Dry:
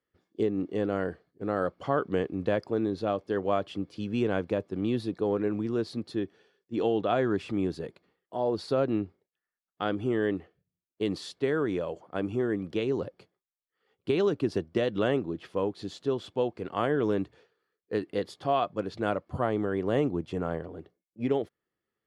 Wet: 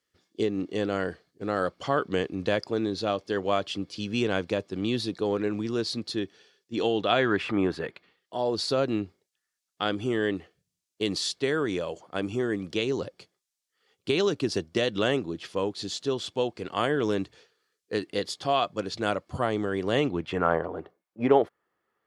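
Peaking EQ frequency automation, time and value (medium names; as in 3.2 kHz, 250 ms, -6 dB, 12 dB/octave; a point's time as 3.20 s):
peaking EQ +14.5 dB 2.4 oct
7.01 s 5.6 kHz
7.59 s 1.1 kHz
8.45 s 6.3 kHz
19.81 s 6.3 kHz
20.58 s 1 kHz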